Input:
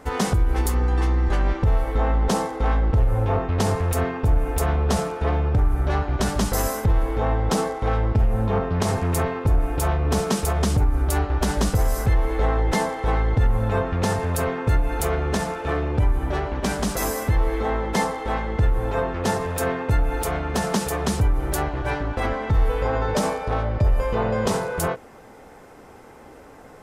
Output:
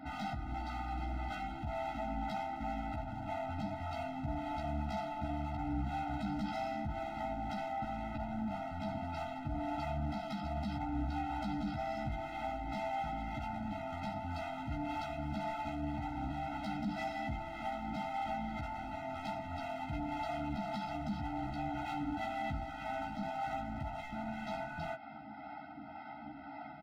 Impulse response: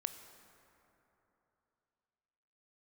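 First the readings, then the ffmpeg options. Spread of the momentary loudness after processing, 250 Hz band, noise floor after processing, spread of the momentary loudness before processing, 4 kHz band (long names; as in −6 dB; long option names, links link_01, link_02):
4 LU, −12.0 dB, −48 dBFS, 4 LU, −16.0 dB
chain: -filter_complex "[0:a]highpass=330,aemphasis=mode=reproduction:type=bsi,acompressor=threshold=-29dB:ratio=10,aresample=11025,asoftclip=type=tanh:threshold=-30.5dB,aresample=44100,acrossover=split=480[link_01][link_02];[link_01]aeval=exprs='val(0)*(1-0.5/2+0.5/2*cos(2*PI*1.9*n/s))':channel_layout=same[link_03];[link_02]aeval=exprs='val(0)*(1-0.5/2-0.5/2*cos(2*PI*1.9*n/s))':channel_layout=same[link_04];[link_03][link_04]amix=inputs=2:normalize=0,asoftclip=type=hard:threshold=-36.5dB,asplit=2[link_05][link_06];[link_06]adelay=14,volume=-3.5dB[link_07];[link_05][link_07]amix=inputs=2:normalize=0,afftfilt=real='re*eq(mod(floor(b*sr/1024/310),2),0)':imag='im*eq(mod(floor(b*sr/1024/310),2),0)':win_size=1024:overlap=0.75,volume=2.5dB"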